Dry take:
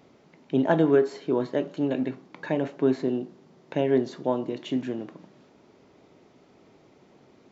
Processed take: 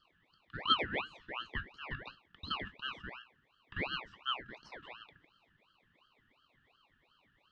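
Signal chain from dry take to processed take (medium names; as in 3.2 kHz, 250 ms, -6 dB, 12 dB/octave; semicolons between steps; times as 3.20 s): two resonant band-passes 1.1 kHz, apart 1.4 oct; frequency shift +270 Hz; ring modulator with a swept carrier 1.5 kHz, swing 50%, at 2.8 Hz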